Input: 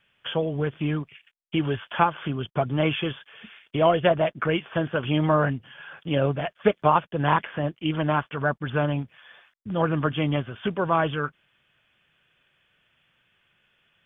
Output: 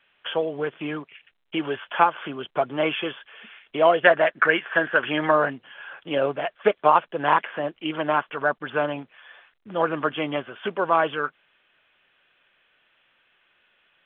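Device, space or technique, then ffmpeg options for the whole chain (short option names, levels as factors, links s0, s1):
telephone: -filter_complex "[0:a]asettb=1/sr,asplit=3[s0][s1][s2];[s0]atrim=end=4.044[s3];[s1]atrim=start=4.04:end=5.31,asetpts=PTS-STARTPTS,afade=t=in:d=0.004:c=qsin,afade=t=out:st=1.266:d=0.004:c=qsin,equalizer=f=1700:t=o:w=0.6:g=12[s4];[s2]atrim=start=5.306[s5];[s3][s4]acrossfade=d=0.004:c1=hsin:c2=qsin[s6];[s6][s5]acrossfade=d=0.004:c1=qsin:c2=hsin,highpass=380,lowpass=3300,volume=1.41" -ar 8000 -c:a pcm_alaw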